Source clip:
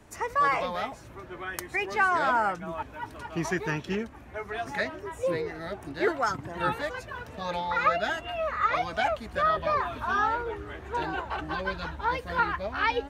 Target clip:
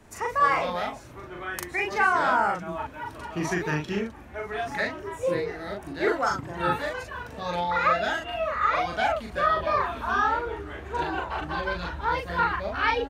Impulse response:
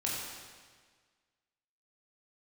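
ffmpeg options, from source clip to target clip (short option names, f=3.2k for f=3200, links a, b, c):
-filter_complex "[0:a]asplit=2[a][b];[b]adelay=40,volume=-2dB[c];[a][c]amix=inputs=2:normalize=0"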